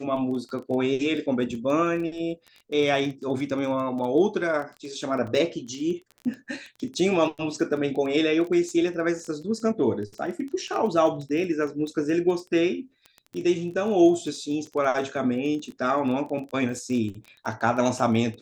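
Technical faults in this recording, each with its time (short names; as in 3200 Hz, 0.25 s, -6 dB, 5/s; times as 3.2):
crackle 14/s -32 dBFS
5.27 gap 4.5 ms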